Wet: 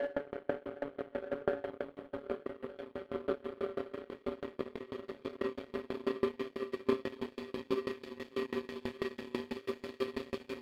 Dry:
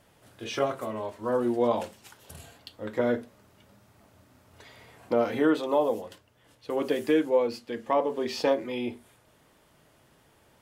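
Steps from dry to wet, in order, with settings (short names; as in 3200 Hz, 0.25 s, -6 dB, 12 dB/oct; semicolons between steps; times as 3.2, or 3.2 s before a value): high shelf 3700 Hz -9.5 dB; notches 50/100/150/200/250/300/350/400 Hz; compressor 2.5:1, threshold -27 dBFS, peak gain reduction 6.5 dB; fixed phaser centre 2400 Hz, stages 4; resonator 190 Hz, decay 0.46 s, harmonics all, mix 80%; Paulstretch 42×, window 0.50 s, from 8.07; on a send: diffused feedback echo 0.575 s, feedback 45%, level -7 dB; on the sum: Schroeder reverb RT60 0.78 s, combs from 29 ms, DRR -0.5 dB; power-law curve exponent 2; dB-ramp tremolo decaying 6.1 Hz, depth 27 dB; gain +17 dB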